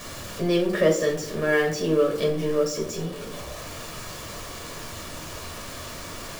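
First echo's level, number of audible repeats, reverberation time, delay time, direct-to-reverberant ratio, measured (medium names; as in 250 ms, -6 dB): no echo, no echo, 0.65 s, no echo, 0.0 dB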